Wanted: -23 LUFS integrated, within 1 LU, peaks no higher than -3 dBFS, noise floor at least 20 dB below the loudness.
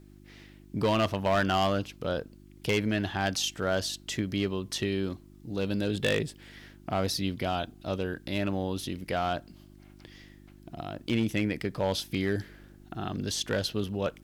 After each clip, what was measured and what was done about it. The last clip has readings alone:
clipped 0.8%; flat tops at -20.0 dBFS; hum 50 Hz; harmonics up to 350 Hz; hum level -53 dBFS; loudness -30.5 LUFS; peak -20.0 dBFS; loudness target -23.0 LUFS
-> clip repair -20 dBFS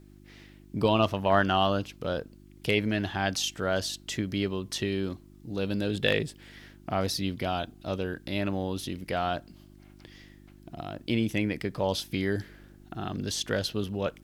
clipped 0.0%; hum 50 Hz; harmonics up to 350 Hz; hum level -53 dBFS
-> de-hum 50 Hz, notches 7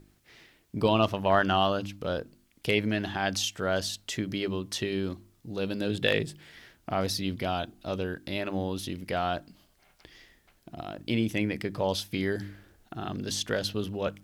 hum none; loudness -30.0 LUFS; peak -10.5 dBFS; loudness target -23.0 LUFS
-> gain +7 dB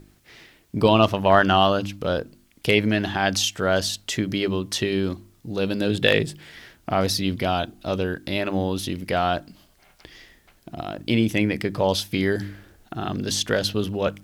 loudness -23.0 LUFS; peak -3.5 dBFS; noise floor -59 dBFS

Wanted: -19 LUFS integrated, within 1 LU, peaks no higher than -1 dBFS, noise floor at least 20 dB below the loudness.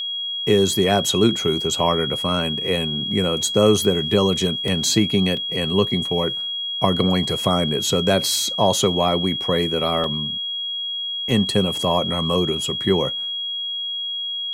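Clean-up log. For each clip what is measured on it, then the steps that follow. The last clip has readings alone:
dropouts 4; longest dropout 2.1 ms; steady tone 3300 Hz; tone level -24 dBFS; loudness -20.0 LUFS; peak -1.5 dBFS; loudness target -19.0 LUFS
-> interpolate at 4.68/5.37/10.04/11.31, 2.1 ms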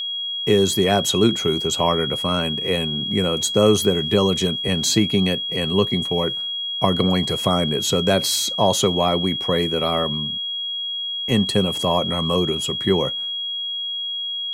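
dropouts 0; steady tone 3300 Hz; tone level -24 dBFS
-> notch 3300 Hz, Q 30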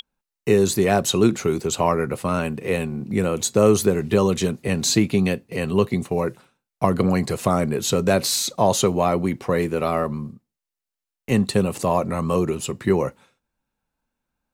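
steady tone none; loudness -21.5 LUFS; peak -1.5 dBFS; loudness target -19.0 LUFS
-> gain +2.5 dB; limiter -1 dBFS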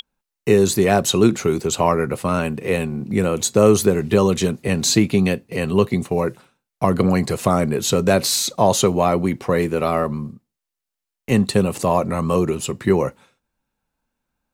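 loudness -19.0 LUFS; peak -1.0 dBFS; noise floor -84 dBFS

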